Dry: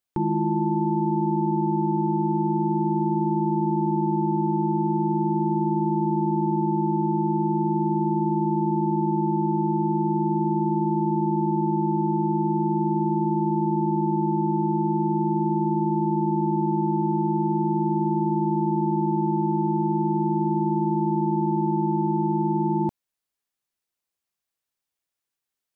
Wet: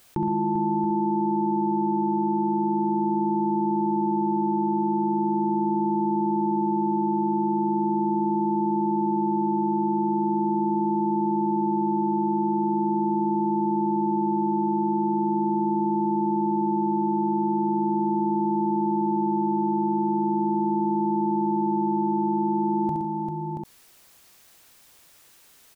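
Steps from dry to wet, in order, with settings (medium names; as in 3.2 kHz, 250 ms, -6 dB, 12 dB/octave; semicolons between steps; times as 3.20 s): on a send: multi-tap echo 68/118/154/394/679/744 ms -6.5/-11/-19.5/-10/-12.5/-18 dB; on the sum: level flattener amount 50%; trim -2.5 dB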